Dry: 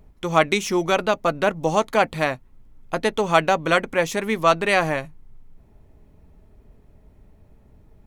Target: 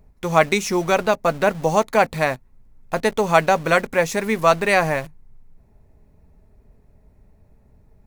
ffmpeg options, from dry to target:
ffmpeg -i in.wav -filter_complex "[0:a]equalizer=frequency=315:width_type=o:width=0.33:gain=-6,equalizer=frequency=1250:width_type=o:width=0.33:gain=-3,equalizer=frequency=3150:width_type=o:width=0.33:gain=-9,asplit=2[link_01][link_02];[link_02]acrusher=bits=5:mix=0:aa=0.000001,volume=-4dB[link_03];[link_01][link_03]amix=inputs=2:normalize=0,volume=-1.5dB" out.wav

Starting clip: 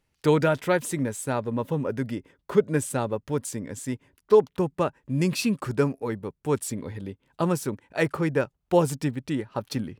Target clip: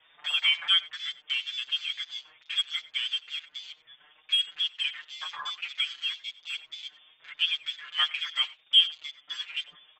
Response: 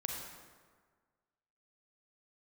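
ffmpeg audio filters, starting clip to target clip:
-filter_complex "[0:a]aeval=exprs='val(0)+0.5*0.0299*sgn(val(0))':channel_layout=same,highpass=frequency=250:poles=1,acrossover=split=320|570|2700[link_01][link_02][link_03][link_04];[link_01]acompressor=threshold=-44dB:ratio=10[link_05];[link_05][link_02][link_03][link_04]amix=inputs=4:normalize=0,lowpass=frequency=3100:width_type=q:width=0.5098,lowpass=frequency=3100:width_type=q:width=0.6013,lowpass=frequency=3100:width_type=q:width=0.9,lowpass=frequency=3100:width_type=q:width=2.563,afreqshift=-3700,afwtdn=0.0178,aecho=1:1:94:0.112,acontrast=49,aecho=1:1:6.6:0.65,asplit=2[link_06][link_07];[link_07]adelay=5.8,afreqshift=2.1[link_08];[link_06][link_08]amix=inputs=2:normalize=1,volume=-6.5dB"

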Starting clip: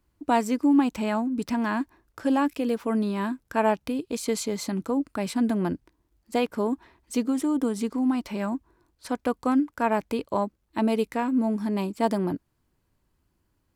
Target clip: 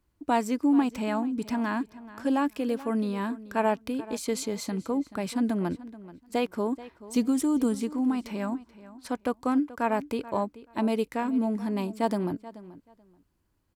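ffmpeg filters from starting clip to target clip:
ffmpeg -i in.wav -filter_complex "[0:a]asettb=1/sr,asplit=3[link_01][link_02][link_03];[link_01]atrim=end=7.164[link_04];[link_02]atrim=start=7.16:end=7.75,asetpts=PTS-STARTPTS,afade=type=in:duration=0.004:curve=qsin,afade=type=out:start_time=0.586:duration=0.004:curve=qsin,bass=frequency=250:gain=7,treble=frequency=4000:gain=7[link_05];[link_03]atrim=start=7.746[link_06];[link_04][link_05]acrossfade=duration=0.004:curve1=hsin:curve2=qsin[link_07];[link_07][link_06]acrossfade=duration=0.004:curve1=qsin:curve2=hsin,asplit=2[link_08][link_09];[link_09]adelay=432,lowpass=frequency=4900:poles=1,volume=-17dB,asplit=2[link_10][link_11];[link_11]adelay=432,lowpass=frequency=4900:poles=1,volume=0.19[link_12];[link_08][link_10][link_12]amix=inputs=3:normalize=0,volume=-2.5dB" out.wav

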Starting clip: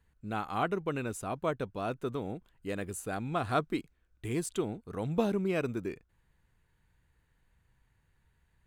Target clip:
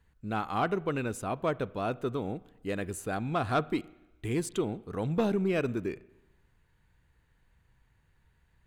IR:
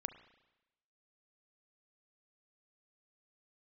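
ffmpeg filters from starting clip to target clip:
-filter_complex "[0:a]asoftclip=type=tanh:threshold=-21dB,asplit=2[link_01][link_02];[1:a]atrim=start_sample=2205,asetrate=43659,aresample=44100,lowpass=7400[link_03];[link_02][link_03]afir=irnorm=-1:irlink=0,volume=-4.5dB[link_04];[link_01][link_04]amix=inputs=2:normalize=0"

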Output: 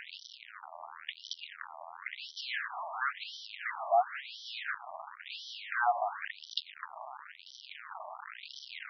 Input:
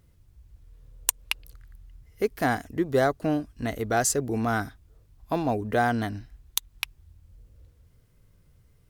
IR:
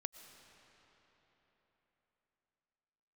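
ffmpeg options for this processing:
-filter_complex "[0:a]aeval=exprs='val(0)+0.5*0.126*sgn(val(0))':channel_layout=same,highshelf=frequency=4900:gain=-8.5,areverse,acompressor=mode=upward:threshold=-31dB:ratio=2.5,areverse[link_01];[1:a]atrim=start_sample=2205,afade=type=out:start_time=0.19:duration=0.01,atrim=end_sample=8820[link_02];[link_01][link_02]afir=irnorm=-1:irlink=0,afftfilt=real='re*between(b*sr/1024,840*pow(4300/840,0.5+0.5*sin(2*PI*0.96*pts/sr))/1.41,840*pow(4300/840,0.5+0.5*sin(2*PI*0.96*pts/sr))*1.41)':imag='im*between(b*sr/1024,840*pow(4300/840,0.5+0.5*sin(2*PI*0.96*pts/sr))/1.41,840*pow(4300/840,0.5+0.5*sin(2*PI*0.96*pts/sr))*1.41)':win_size=1024:overlap=0.75"

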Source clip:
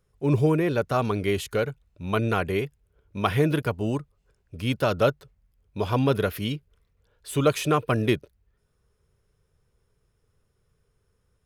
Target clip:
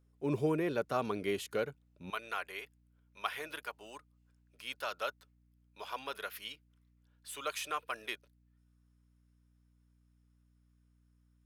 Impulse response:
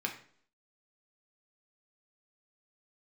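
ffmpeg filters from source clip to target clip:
-af "asetnsamples=nb_out_samples=441:pad=0,asendcmd='2.1 highpass f 990',highpass=200,aeval=exprs='val(0)+0.00112*(sin(2*PI*60*n/s)+sin(2*PI*2*60*n/s)/2+sin(2*PI*3*60*n/s)/3+sin(2*PI*4*60*n/s)/4+sin(2*PI*5*60*n/s)/5)':channel_layout=same,volume=-8.5dB"

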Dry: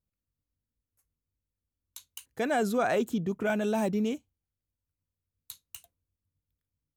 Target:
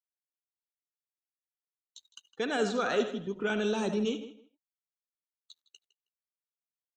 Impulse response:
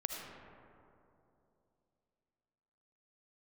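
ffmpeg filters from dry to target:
-filter_complex "[0:a]acrossover=split=640|1700[link_01][link_02][link_03];[link_03]crystalizer=i=6:c=0[link_04];[link_01][link_02][link_04]amix=inputs=3:normalize=0,alimiter=limit=-11.5dB:level=0:latency=1:release=418,asoftclip=type=tanh:threshold=-15.5dB,highpass=160,equalizer=frequency=430:width_type=q:width=4:gain=5,equalizer=frequency=650:width_type=q:width=4:gain=-9,equalizer=frequency=1300:width_type=q:width=4:gain=5,equalizer=frequency=2200:width_type=q:width=4:gain=-7,equalizer=frequency=5000:width_type=q:width=4:gain=-7,lowpass=frequency=5200:width=0.5412,lowpass=frequency=5200:width=1.3066[link_05];[1:a]atrim=start_sample=2205,atrim=end_sample=4410[link_06];[link_05][link_06]afir=irnorm=-1:irlink=0,aeval=exprs='sgn(val(0))*max(abs(val(0))-0.00224,0)':channel_layout=same,afftdn=noise_reduction=20:noise_floor=-53,asplit=2[link_07][link_08];[link_08]adelay=159,lowpass=frequency=3700:poles=1,volume=-14dB,asplit=2[link_09][link_10];[link_10]adelay=159,lowpass=frequency=3700:poles=1,volume=0.18[link_11];[link_07][link_09][link_11]amix=inputs=3:normalize=0"

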